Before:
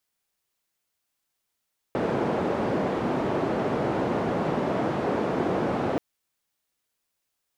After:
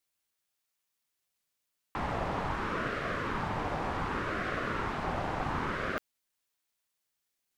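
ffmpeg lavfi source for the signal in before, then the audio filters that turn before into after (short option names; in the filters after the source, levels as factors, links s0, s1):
-f lavfi -i "anoisesrc=c=white:d=4.03:r=44100:seed=1,highpass=f=150,lowpass=f=550,volume=-4.3dB"
-af "lowshelf=f=430:g=-9.5,aeval=exprs='val(0)*sin(2*PI*610*n/s+610*0.5/0.67*sin(2*PI*0.67*n/s))':c=same"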